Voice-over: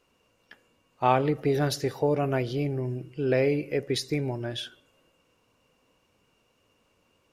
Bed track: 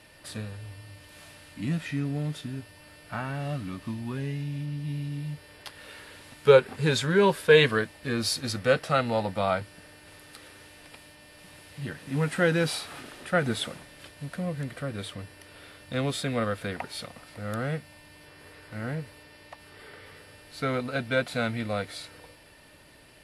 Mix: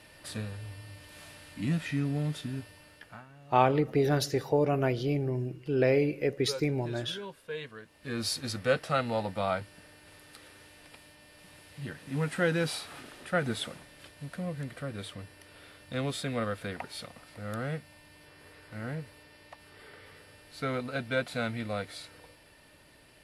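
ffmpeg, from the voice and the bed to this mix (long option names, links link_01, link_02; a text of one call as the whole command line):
ffmpeg -i stem1.wav -i stem2.wav -filter_complex "[0:a]adelay=2500,volume=-1dB[link_01];[1:a]volume=16.5dB,afade=type=out:start_time=2.6:duration=0.66:silence=0.0944061,afade=type=in:start_time=7.82:duration=0.42:silence=0.141254[link_02];[link_01][link_02]amix=inputs=2:normalize=0" out.wav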